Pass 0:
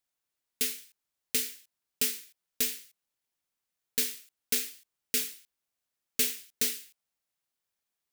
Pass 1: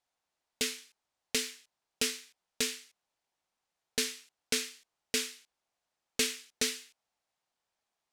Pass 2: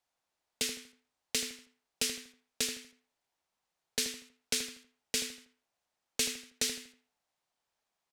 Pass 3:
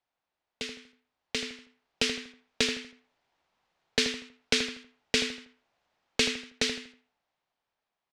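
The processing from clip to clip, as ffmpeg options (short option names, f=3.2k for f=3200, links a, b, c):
-af "lowpass=7.3k,equalizer=f=780:t=o:w=1.1:g=8.5,volume=2dB"
-filter_complex "[0:a]acrossover=split=160|3000[a][b][c];[b]acompressor=threshold=-37dB:ratio=6[d];[a][d][c]amix=inputs=3:normalize=0,asplit=2[e][f];[f]adelay=80,lowpass=f=2.1k:p=1,volume=-8dB,asplit=2[g][h];[h]adelay=80,lowpass=f=2.1k:p=1,volume=0.38,asplit=2[i][j];[j]adelay=80,lowpass=f=2.1k:p=1,volume=0.38,asplit=2[k][l];[l]adelay=80,lowpass=f=2.1k:p=1,volume=0.38[m];[e][g][i][k][m]amix=inputs=5:normalize=0"
-af "lowpass=3.7k,dynaudnorm=f=260:g=13:m=11dB"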